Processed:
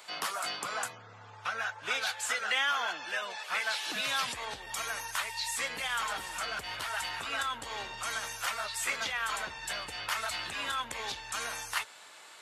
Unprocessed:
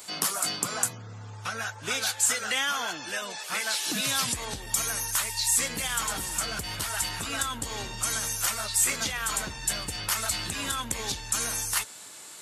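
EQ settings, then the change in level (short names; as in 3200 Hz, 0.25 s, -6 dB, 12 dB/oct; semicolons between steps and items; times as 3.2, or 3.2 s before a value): three-band isolator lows -15 dB, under 490 Hz, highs -15 dB, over 3900 Hz; 0.0 dB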